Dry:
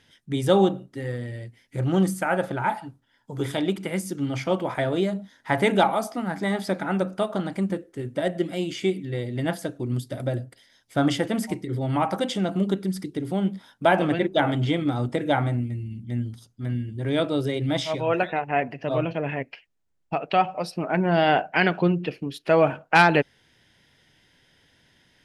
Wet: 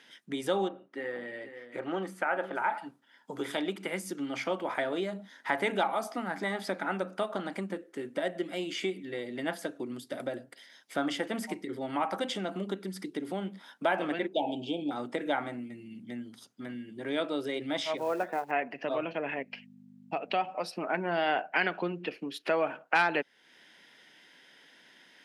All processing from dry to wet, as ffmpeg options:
ffmpeg -i in.wav -filter_complex "[0:a]asettb=1/sr,asplit=3[link_01][link_02][link_03];[link_01]atrim=end=0.684[link_04];[link_02]atrim=start=0.68:end=2.78,asetpts=PTS-STARTPTS,afade=type=in:duration=0.004:curve=qsin,afade=type=out:start_time=2.096:duration=0.004:curve=qsin,bass=frequency=250:gain=-10,treble=frequency=4000:gain=-14,aecho=1:1:479:0.188,atrim=end_sample=92610[link_05];[link_03]atrim=start=2.776[link_06];[link_04][link_05]acrossfade=duration=0.004:curve1=hsin:curve2=qsin[link_07];[link_07][link_06]acrossfade=duration=0.004:curve1=qsin:curve2=hsin,asettb=1/sr,asplit=3[link_08][link_09][link_10];[link_08]atrim=end=14.334[link_11];[link_09]atrim=start=14.33:end=14.91,asetpts=PTS-STARTPTS,afade=type=in:duration=0.004:curve=qsin,afade=type=out:start_time=0.576:duration=0.004:curve=qsin,asuperstop=centerf=1500:order=20:qfactor=1,highshelf=frequency=8100:gain=-10[link_12];[link_10]atrim=start=14.906[link_13];[link_11][link_12]acrossfade=duration=0.004:curve1=hsin:curve2=qsin[link_14];[link_14][link_13]acrossfade=duration=0.004:curve1=qsin:curve2=hsin,asettb=1/sr,asplit=3[link_15][link_16][link_17];[link_15]atrim=end=17.974[link_18];[link_16]atrim=start=17.97:end=18.51,asetpts=PTS-STARTPTS,afade=type=in:duration=0.004:curve=qsin,afade=type=out:start_time=0.536:duration=0.004:curve=qsin,lowpass=1200,acrusher=bits=6:mode=log:mix=0:aa=0.000001[link_19];[link_17]atrim=start=18.506[link_20];[link_18][link_19]acrossfade=duration=0.004:curve1=hsin:curve2=qsin[link_21];[link_21][link_20]acrossfade=duration=0.004:curve1=qsin:curve2=hsin,asettb=1/sr,asplit=3[link_22][link_23][link_24];[link_22]atrim=end=19.344[link_25];[link_23]atrim=start=19.34:end=20.52,asetpts=PTS-STARTPTS,afade=type=in:duration=0.004:curve=qsin,afade=type=out:start_time=1.176:duration=0.004:curve=qsin,equalizer=frequency=1400:width=1.1:gain=-6,aeval=exprs='val(0)+0.01*(sin(2*PI*50*n/s)+sin(2*PI*2*50*n/s)/2+sin(2*PI*3*50*n/s)/3+sin(2*PI*4*50*n/s)/4+sin(2*PI*5*50*n/s)/5)':channel_layout=same[link_26];[link_24]atrim=start=20.516[link_27];[link_25][link_26]acrossfade=duration=0.004:curve1=hsin:curve2=qsin[link_28];[link_28][link_27]acrossfade=duration=0.004:curve1=qsin:curve2=hsin,acompressor=threshold=-37dB:ratio=2,highpass=frequency=210:width=0.5412,highpass=frequency=210:width=1.3066,equalizer=frequency=1700:width_type=o:width=2.5:gain=5.5" out.wav

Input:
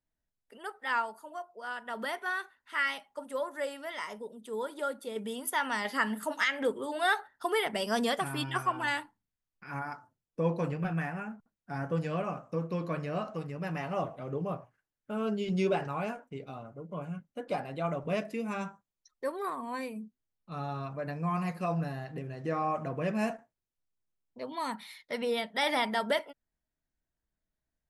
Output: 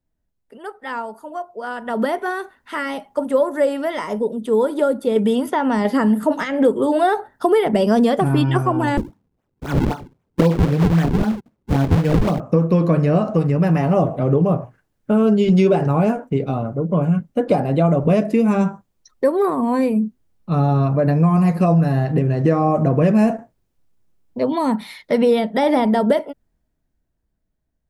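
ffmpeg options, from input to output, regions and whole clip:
ffmpeg -i in.wav -filter_complex "[0:a]asettb=1/sr,asplit=3[link_01][link_02][link_03];[link_01]atrim=end=8.974[link_04];[link_02]atrim=start=8.97:end=12.4,asetpts=PTS-STARTPTS,afade=type=in:duration=0.004:curve=qsin,afade=type=out:start_time=3.426:duration=0.004:curve=qsin,highpass=110,acrusher=samples=42:mix=1:aa=0.000001:lfo=1:lforange=67.2:lforate=3.8[link_05];[link_03]atrim=start=12.396[link_06];[link_04][link_05]acrossfade=duration=0.004:curve1=hsin:curve2=qsin[link_07];[link_07][link_06]acrossfade=duration=0.004:curve1=qsin:curve2=hsin,dynaudnorm=framelen=160:gausssize=21:maxgain=11dB,tiltshelf=frequency=820:gain=6.5,acrossover=split=780|5300[link_08][link_09][link_10];[link_08]acompressor=threshold=-20dB:ratio=4[link_11];[link_09]acompressor=threshold=-36dB:ratio=4[link_12];[link_10]acompressor=threshold=-53dB:ratio=4[link_13];[link_11][link_12][link_13]amix=inputs=3:normalize=0,volume=7dB" out.wav

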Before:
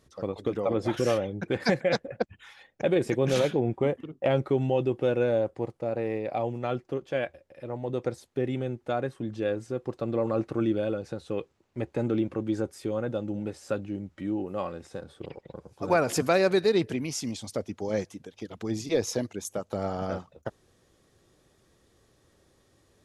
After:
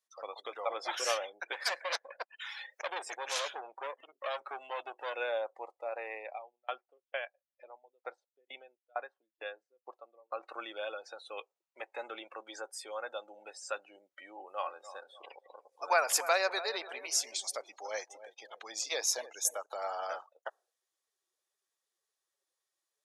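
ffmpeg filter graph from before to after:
ffmpeg -i in.wav -filter_complex "[0:a]asettb=1/sr,asplit=3[link_01][link_02][link_03];[link_01]atrim=end=1.534[link_04];[link_02]atrim=start=1.53:end=5.14,asetpts=PTS-STARTPTS,afade=type=in:duration=0.004:curve=qsin,afade=type=out:start_time=3.606:duration=0.004:curve=qsin,bandreject=frequency=740:width=9.1,acompressor=mode=upward:threshold=-28dB:ratio=2.5:attack=3.2:release=140:knee=2.83:detection=peak,aeval=exprs='(tanh(17.8*val(0)+0.75)-tanh(0.75))/17.8':channel_layout=same[link_05];[link_03]atrim=start=5.136[link_06];[link_04][link_05]acrossfade=duration=0.004:curve1=hsin:curve2=qsin[link_07];[link_07][link_06]acrossfade=duration=0.004:curve1=qsin:curve2=hsin,asettb=1/sr,asplit=3[link_08][link_09][link_10];[link_08]atrim=end=6.234[link_11];[link_09]atrim=start=6.23:end=10.43,asetpts=PTS-STARTPTS,afade=type=in:duration=0.004:curve=qsin,afade=type=out:start_time=4.196:duration=0.004:curve=qsin,lowpass=4400,aeval=exprs='val(0)*pow(10,-32*if(lt(mod(2.2*n/s,1),2*abs(2.2)/1000),1-mod(2.2*n/s,1)/(2*abs(2.2)/1000),(mod(2.2*n/s,1)-2*abs(2.2)/1000)/(1-2*abs(2.2)/1000))/20)':channel_layout=same[link_12];[link_10]atrim=start=10.426[link_13];[link_11][link_12]acrossfade=duration=0.004:curve1=hsin:curve2=qsin[link_14];[link_14][link_13]acrossfade=duration=0.004:curve1=qsin:curve2=hsin,asettb=1/sr,asplit=3[link_15][link_16][link_17];[link_15]atrim=end=14.374[link_18];[link_16]atrim=start=14.37:end=19.66,asetpts=PTS-STARTPTS,afade=type=in:duration=0.004:curve=qsin,afade=type=out:start_time=5.286:duration=0.004:curve=qsin,asplit=2[link_19][link_20];[link_20]adelay=291,lowpass=frequency=2400:poles=1,volume=-13dB,asplit=2[link_21][link_22];[link_22]adelay=291,lowpass=frequency=2400:poles=1,volume=0.45,asplit=2[link_23][link_24];[link_24]adelay=291,lowpass=frequency=2400:poles=1,volume=0.45,asplit=2[link_25][link_26];[link_26]adelay=291,lowpass=frequency=2400:poles=1,volume=0.45[link_27];[link_19][link_21][link_23][link_25][link_27]amix=inputs=5:normalize=0,atrim=end_sample=233289,adynamicequalizer=threshold=0.01:dfrequency=1700:dqfactor=0.7:tfrequency=1700:tqfactor=0.7:attack=5:release=100:ratio=0.375:range=3.5:mode=cutabove:tftype=highshelf[link_28];[link_17]atrim=start=19.656[link_29];[link_18][link_28]acrossfade=duration=0.004:curve1=hsin:curve2=qsin[link_30];[link_30][link_29]acrossfade=duration=0.004:curve1=qsin:curve2=hsin,afftdn=noise_reduction=23:noise_floor=-51,highpass=frequency=710:width=0.5412,highpass=frequency=710:width=1.3066,highshelf=frequency=4300:gain=10" out.wav

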